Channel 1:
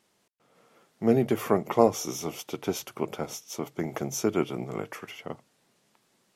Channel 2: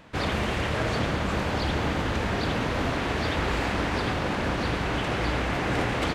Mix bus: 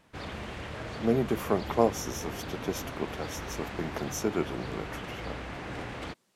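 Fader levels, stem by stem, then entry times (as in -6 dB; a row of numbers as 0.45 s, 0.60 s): -3.5 dB, -12.0 dB; 0.00 s, 0.00 s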